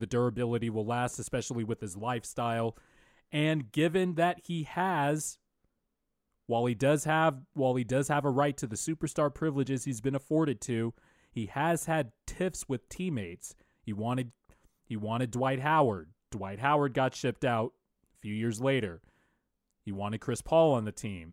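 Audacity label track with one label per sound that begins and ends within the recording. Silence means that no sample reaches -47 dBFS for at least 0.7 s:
6.490000	18.970000	sound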